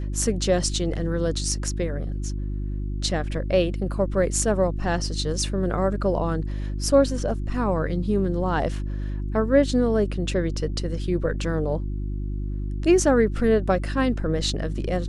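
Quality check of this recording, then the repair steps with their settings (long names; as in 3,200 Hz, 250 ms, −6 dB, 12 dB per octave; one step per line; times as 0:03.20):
mains hum 50 Hz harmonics 7 −28 dBFS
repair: hum removal 50 Hz, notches 7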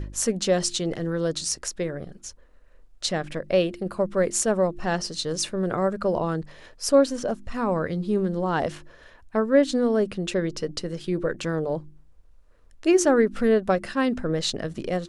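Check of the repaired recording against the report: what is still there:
none of them is left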